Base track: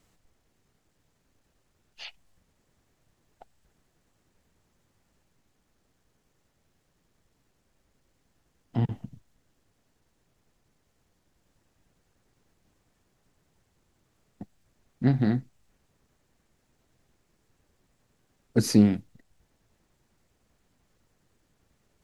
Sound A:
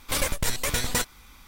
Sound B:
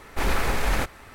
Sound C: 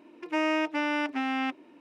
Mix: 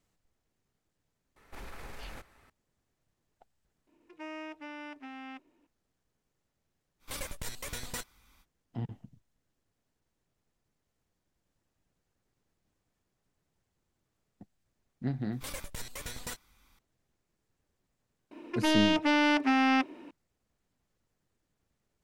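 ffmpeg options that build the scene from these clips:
-filter_complex "[3:a]asplit=2[s0][s1];[1:a]asplit=2[s2][s3];[0:a]volume=0.299[s4];[2:a]acompressor=threshold=0.0708:ratio=6:attack=3.2:release=140:knee=1:detection=peak[s5];[s1]aeval=exprs='0.178*sin(PI/2*2*val(0)/0.178)':c=same[s6];[s5]atrim=end=1.14,asetpts=PTS-STARTPTS,volume=0.15,afade=t=in:d=0.004:c=hsin,afade=t=out:st=1.136:d=0.004:c=hsin,adelay=1360[s7];[s0]atrim=end=1.8,asetpts=PTS-STARTPTS,volume=0.168,afade=t=in:d=0.004:c=hsin,afade=t=out:st=1.796:d=0.004:c=hsin,adelay=3870[s8];[s2]atrim=end=1.47,asetpts=PTS-STARTPTS,volume=0.211,afade=t=in:d=0.05,afade=t=out:st=1.42:d=0.05,adelay=6990[s9];[s3]atrim=end=1.47,asetpts=PTS-STARTPTS,volume=0.178,afade=t=in:d=0.004:c=hsin,afade=t=out:st=1.466:d=0.004:c=hsin,adelay=15320[s10];[s6]atrim=end=1.8,asetpts=PTS-STARTPTS,volume=0.596,afade=t=in:d=0.004:c=hsin,afade=t=out:st=1.796:d=0.004:c=hsin,adelay=18310[s11];[s4][s7][s8][s9][s10][s11]amix=inputs=6:normalize=0"

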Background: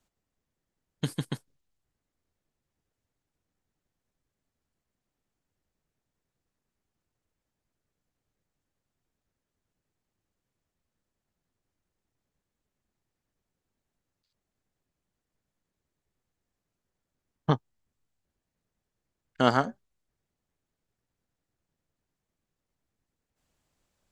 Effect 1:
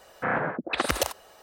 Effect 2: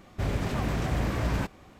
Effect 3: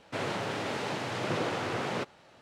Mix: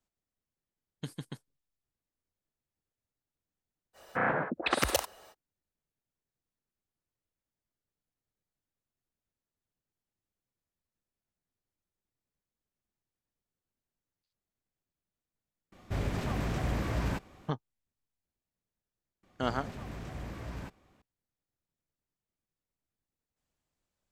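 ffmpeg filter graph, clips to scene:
-filter_complex "[2:a]asplit=2[s0][s1];[0:a]volume=0.335[s2];[1:a]atrim=end=1.42,asetpts=PTS-STARTPTS,volume=0.75,afade=t=in:d=0.05,afade=t=out:st=1.37:d=0.05,adelay=173313S[s3];[s0]atrim=end=1.79,asetpts=PTS-STARTPTS,volume=0.631,afade=t=in:d=0.004:c=hsin,afade=t=out:st=1.786:d=0.004:c=hsin,adelay=693252S[s4];[s1]atrim=end=1.79,asetpts=PTS-STARTPTS,volume=0.211,afade=t=in:d=0.004:c=hsin,afade=t=out:st=1.786:d=0.004:c=hsin,adelay=19230[s5];[s2][s3][s4][s5]amix=inputs=4:normalize=0"

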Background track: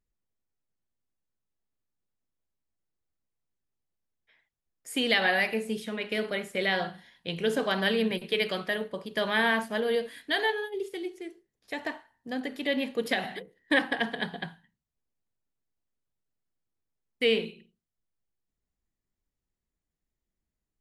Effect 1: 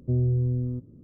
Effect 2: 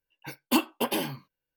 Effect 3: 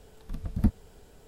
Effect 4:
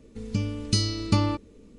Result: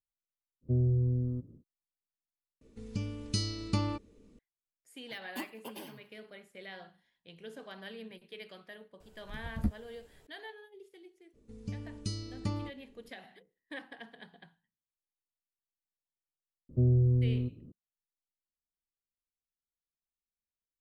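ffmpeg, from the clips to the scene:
-filter_complex "[1:a]asplit=2[s0][s1];[4:a]asplit=2[s2][s3];[0:a]volume=0.106[s4];[2:a]aecho=1:1:93|186|279|372:0.075|0.0435|0.0252|0.0146[s5];[3:a]asplit=2[s6][s7];[s7]adelay=14,volume=0.398[s8];[s6][s8]amix=inputs=2:normalize=0[s9];[s3]equalizer=f=2700:w=0.42:g=-5.5[s10];[s4]asplit=2[s11][s12];[s11]atrim=end=2.614[s13];[s2]atrim=end=1.78,asetpts=PTS-STARTPTS,volume=0.376[s14];[s12]atrim=start=4.386[s15];[s0]atrim=end=1.03,asetpts=PTS-STARTPTS,volume=0.631,afade=t=in:d=0.1,afade=t=out:st=0.93:d=0.1,adelay=610[s16];[s5]atrim=end=1.56,asetpts=PTS-STARTPTS,volume=0.133,afade=t=in:d=0.004:c=hsin,afade=t=out:st=1.556:d=0.004:c=hsin,adelay=4840[s17];[s9]atrim=end=1.27,asetpts=PTS-STARTPTS,volume=0.376,afade=t=in:d=0.004:c=hsin,afade=t=out:st=1.266:d=0.004:c=hsin,adelay=9000[s18];[s10]atrim=end=1.78,asetpts=PTS-STARTPTS,volume=0.251,afade=t=in:d=0.02,afade=t=out:st=1.76:d=0.02,adelay=11330[s19];[s1]atrim=end=1.03,asetpts=PTS-STARTPTS,volume=0.841,afade=t=in:d=0.004:c=hsin,afade=t=out:st=1.026:d=0.004:c=hsin,adelay=16690[s20];[s13][s14]acrossfade=d=0.004:c1=hsin:c2=hsin[s21];[s21][s15]acrossfade=d=0.004:c1=hsin:c2=hsin[s22];[s22][s16][s17][s18][s19][s20]amix=inputs=6:normalize=0"

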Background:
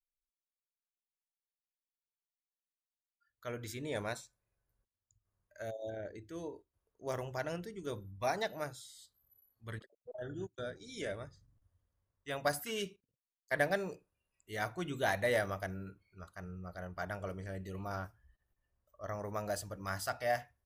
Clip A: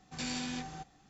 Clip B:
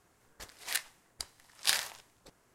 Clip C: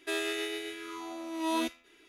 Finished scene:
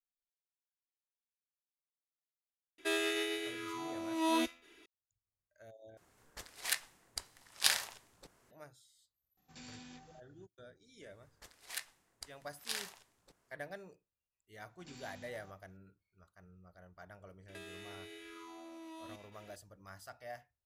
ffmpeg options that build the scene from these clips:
-filter_complex "[3:a]asplit=2[s0][s1];[2:a]asplit=2[s2][s3];[1:a]asplit=2[s4][s5];[0:a]volume=0.2[s6];[s3]alimiter=limit=0.237:level=0:latency=1:release=44[s7];[s1]acompressor=threshold=0.00447:ratio=6:attack=3.2:release=140:knee=1:detection=peak[s8];[s6]asplit=2[s9][s10];[s9]atrim=end=5.974[s11];[s2]atrim=end=2.54,asetpts=PTS-STARTPTS,volume=0.891[s12];[s10]atrim=start=8.506[s13];[s0]atrim=end=2.08,asetpts=PTS-STARTPTS,volume=0.891,afade=t=in:d=0.004:c=hsin,afade=t=out:st=2.076:d=0.004:c=hsin,adelay=2780[s14];[s4]atrim=end=1.09,asetpts=PTS-STARTPTS,volume=0.178,afade=t=in:d=0.004:c=hsin,afade=t=out:st=1.086:d=0.004:c=hsin,adelay=9370[s15];[s7]atrim=end=2.54,asetpts=PTS-STARTPTS,volume=0.376,afade=t=in:d=0.004:c=hsin,afade=t=out:st=2.536:d=0.004:c=hsin,adelay=11020[s16];[s5]atrim=end=1.09,asetpts=PTS-STARTPTS,volume=0.133,afade=t=in:d=0.004:c=hsin,afade=t=out:st=1.086:d=0.004:c=hsin,adelay=14680[s17];[s8]atrim=end=2.08,asetpts=PTS-STARTPTS,volume=0.891,afade=t=in:d=0.004:c=hsin,afade=t=out:st=2.076:d=0.004:c=hsin,adelay=770868S[s18];[s11][s12]acrossfade=d=0.004:c1=hsin:c2=hsin[s19];[s19][s13]acrossfade=d=0.004:c1=hsin:c2=hsin[s20];[s20][s14][s15][s16][s17][s18]amix=inputs=6:normalize=0"

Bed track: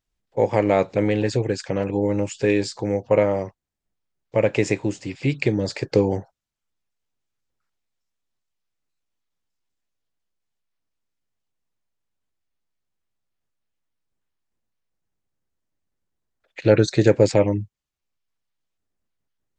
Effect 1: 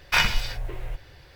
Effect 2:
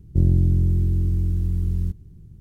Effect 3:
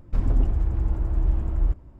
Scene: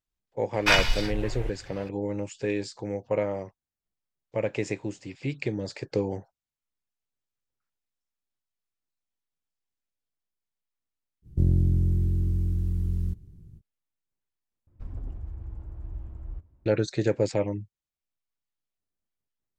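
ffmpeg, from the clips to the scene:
-filter_complex "[0:a]volume=0.355[s0];[1:a]lowpass=11000[s1];[3:a]equalizer=f=86:t=o:w=0.77:g=8[s2];[s0]asplit=2[s3][s4];[s3]atrim=end=14.674[s5];[s2]atrim=end=1.99,asetpts=PTS-STARTPTS,volume=0.133[s6];[s4]atrim=start=16.656[s7];[s1]atrim=end=1.35,asetpts=PTS-STARTPTS,afade=t=in:d=0.004:c=hsin,afade=t=out:st=1.346:d=0.004:c=hsin,adelay=540[s8];[2:a]atrim=end=2.4,asetpts=PTS-STARTPTS,volume=0.596,afade=t=in:d=0.05,afade=t=out:st=2.35:d=0.05,adelay=494802S[s9];[s5][s6]acrossfade=d=0.004:c1=hsin:c2=hsin[s10];[s10][s7]acrossfade=d=0.004:c1=hsin:c2=hsin[s11];[s11][s8][s9]amix=inputs=3:normalize=0"

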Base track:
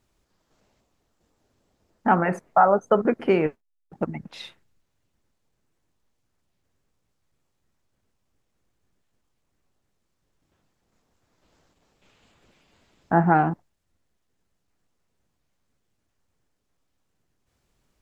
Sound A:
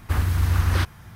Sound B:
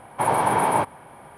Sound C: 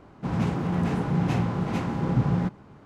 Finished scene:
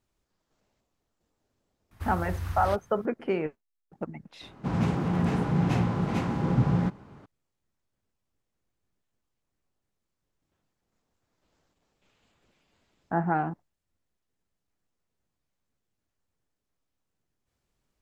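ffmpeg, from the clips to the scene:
-filter_complex "[0:a]volume=0.398[s0];[1:a]atrim=end=1.15,asetpts=PTS-STARTPTS,volume=0.224,afade=t=in:d=0.004:c=hsin,afade=t=out:st=1.146:d=0.004:c=hsin,adelay=1910[s1];[3:a]atrim=end=2.85,asetpts=PTS-STARTPTS,volume=0.944,afade=t=in:d=0.004:c=hsin,afade=t=out:st=2.846:d=0.004:c=hsin,adelay=194481S[s2];[s0][s1][s2]amix=inputs=3:normalize=0"

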